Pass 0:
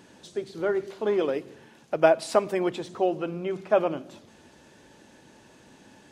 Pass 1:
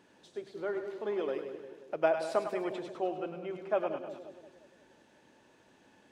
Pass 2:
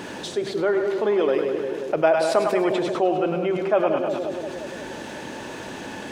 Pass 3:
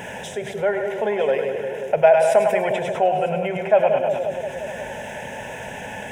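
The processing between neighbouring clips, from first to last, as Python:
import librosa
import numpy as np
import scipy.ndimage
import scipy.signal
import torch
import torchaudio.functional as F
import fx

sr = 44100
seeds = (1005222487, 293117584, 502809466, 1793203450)

y1 = fx.bass_treble(x, sr, bass_db=-6, treble_db=-6)
y1 = fx.echo_split(y1, sr, split_hz=610.0, low_ms=177, high_ms=102, feedback_pct=52, wet_db=-7.5)
y1 = y1 * 10.0 ** (-8.5 / 20.0)
y2 = fx.env_flatten(y1, sr, amount_pct=50)
y2 = y2 * 10.0 ** (8.0 / 20.0)
y3 = fx.fixed_phaser(y2, sr, hz=1200.0, stages=6)
y3 = y3 + 10.0 ** (-20.5 / 20.0) * np.pad(y3, (int(955 * sr / 1000.0), 0))[:len(y3)]
y3 = y3 * 10.0 ** (5.5 / 20.0)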